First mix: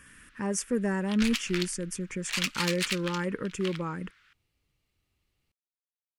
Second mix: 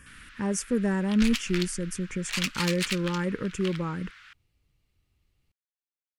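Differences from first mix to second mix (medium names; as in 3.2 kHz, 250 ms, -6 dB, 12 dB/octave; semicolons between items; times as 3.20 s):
first sound +11.5 dB; master: add bass shelf 160 Hz +8.5 dB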